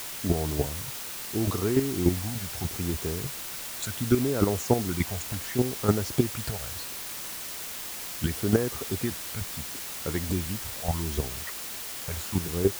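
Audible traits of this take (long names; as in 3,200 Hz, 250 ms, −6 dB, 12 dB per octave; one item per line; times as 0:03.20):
chopped level 3.4 Hz, depth 65%, duty 10%
phaser sweep stages 12, 0.72 Hz, lowest notch 310–4,400 Hz
a quantiser's noise floor 8 bits, dither triangular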